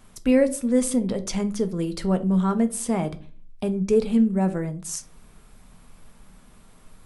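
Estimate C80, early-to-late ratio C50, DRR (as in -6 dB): 22.5 dB, 17.0 dB, 8.0 dB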